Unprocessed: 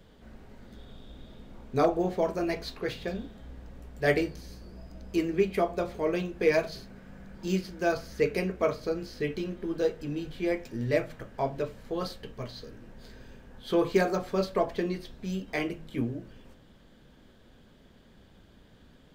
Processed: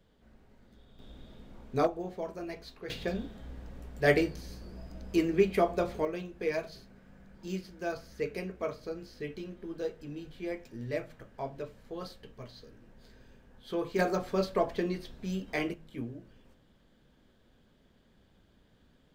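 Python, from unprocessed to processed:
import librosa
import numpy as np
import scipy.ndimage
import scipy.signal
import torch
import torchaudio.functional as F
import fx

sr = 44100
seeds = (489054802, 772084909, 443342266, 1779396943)

y = fx.gain(x, sr, db=fx.steps((0.0, -10.5), (0.99, -3.0), (1.87, -10.0), (2.9, 0.5), (6.05, -8.0), (13.99, -1.5), (15.74, -8.0)))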